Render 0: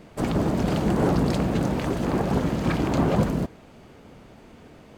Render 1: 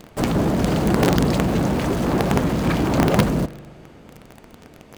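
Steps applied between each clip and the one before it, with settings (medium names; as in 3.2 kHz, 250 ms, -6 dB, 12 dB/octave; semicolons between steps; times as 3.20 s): in parallel at -7 dB: companded quantiser 2-bit; on the sum: spring tank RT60 2.2 s, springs 40 ms, chirp 30 ms, DRR 19.5 dB; trim +1.5 dB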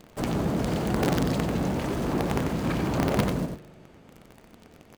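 multi-tap echo 91/114 ms -6/-16.5 dB; trim -8 dB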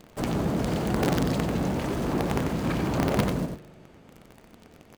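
no audible change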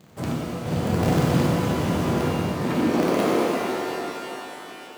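high-pass sweep 100 Hz -> 350 Hz, 2.16–2.97 s; trance gate "xx..xxxxx.xx" 92 bpm; pitch-shifted reverb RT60 3.4 s, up +12 st, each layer -8 dB, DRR -5.5 dB; trim -4 dB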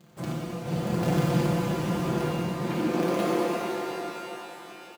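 comb 5.8 ms, depth 69%; trim -6.5 dB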